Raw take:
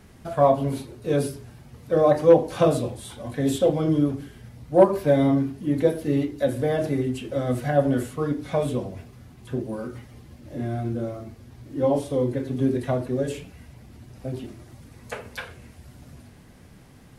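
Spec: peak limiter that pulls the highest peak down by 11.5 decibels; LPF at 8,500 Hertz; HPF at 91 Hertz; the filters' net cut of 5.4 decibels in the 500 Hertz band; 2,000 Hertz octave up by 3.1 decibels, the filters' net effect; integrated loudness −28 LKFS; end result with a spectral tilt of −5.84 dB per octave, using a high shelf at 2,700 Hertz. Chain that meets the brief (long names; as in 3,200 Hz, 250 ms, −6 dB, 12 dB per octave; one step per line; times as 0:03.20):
high-pass filter 91 Hz
low-pass filter 8,500 Hz
parametric band 500 Hz −6.5 dB
parametric band 2,000 Hz +6 dB
high-shelf EQ 2,700 Hz −4 dB
level +2.5 dB
brickwall limiter −16.5 dBFS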